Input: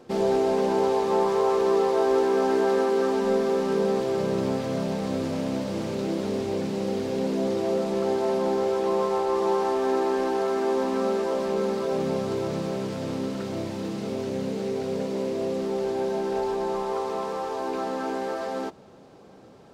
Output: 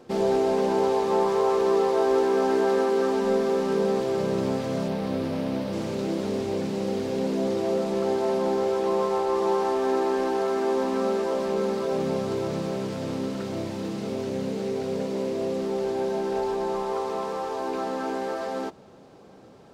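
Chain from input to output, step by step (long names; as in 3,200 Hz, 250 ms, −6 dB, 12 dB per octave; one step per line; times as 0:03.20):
0:04.88–0:05.73: parametric band 7,200 Hz −9 dB 0.7 octaves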